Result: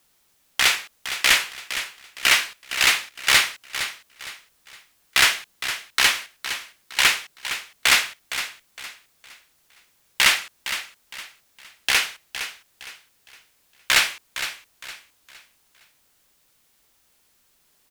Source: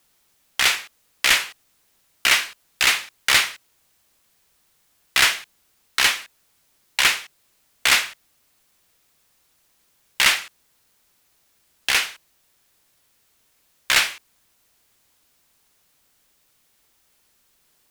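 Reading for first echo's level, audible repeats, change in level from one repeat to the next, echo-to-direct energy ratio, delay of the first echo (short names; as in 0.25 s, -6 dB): -11.0 dB, 3, -9.5 dB, -10.5 dB, 0.462 s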